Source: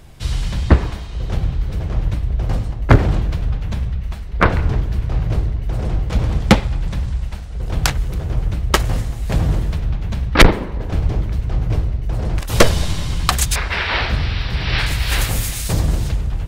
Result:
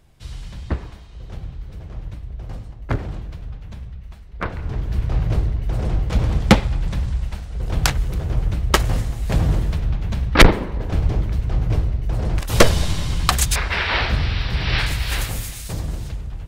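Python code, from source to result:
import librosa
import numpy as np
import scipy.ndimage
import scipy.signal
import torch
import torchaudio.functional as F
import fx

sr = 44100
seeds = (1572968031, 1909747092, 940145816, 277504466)

y = fx.gain(x, sr, db=fx.line((4.54, -12.5), (4.98, -1.0), (14.71, -1.0), (15.64, -9.0)))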